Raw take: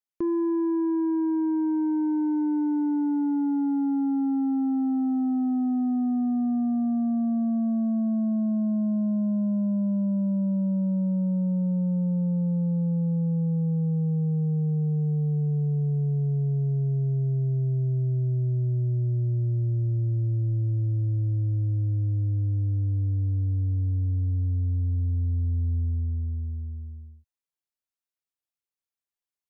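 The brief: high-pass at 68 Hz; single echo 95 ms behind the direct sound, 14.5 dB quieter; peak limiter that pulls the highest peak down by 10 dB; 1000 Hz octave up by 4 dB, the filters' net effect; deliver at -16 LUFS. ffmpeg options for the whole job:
-af "highpass=68,equalizer=f=1k:t=o:g=5,alimiter=level_in=5.5dB:limit=-24dB:level=0:latency=1,volume=-5.5dB,aecho=1:1:95:0.188,volume=18dB"

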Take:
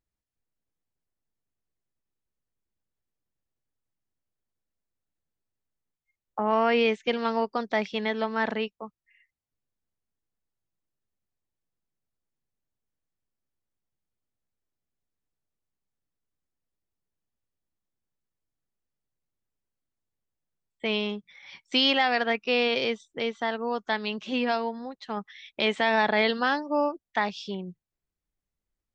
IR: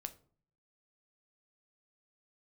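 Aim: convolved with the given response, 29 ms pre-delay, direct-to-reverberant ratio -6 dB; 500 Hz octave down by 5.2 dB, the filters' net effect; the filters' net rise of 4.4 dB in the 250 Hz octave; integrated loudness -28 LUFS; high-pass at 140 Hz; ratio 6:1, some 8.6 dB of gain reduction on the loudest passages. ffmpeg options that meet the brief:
-filter_complex "[0:a]highpass=140,equalizer=f=250:t=o:g=7,equalizer=f=500:t=o:g=-8,acompressor=threshold=-26dB:ratio=6,asplit=2[a][b];[1:a]atrim=start_sample=2205,adelay=29[c];[b][c]afir=irnorm=-1:irlink=0,volume=9.5dB[d];[a][d]amix=inputs=2:normalize=0,volume=-3.5dB"

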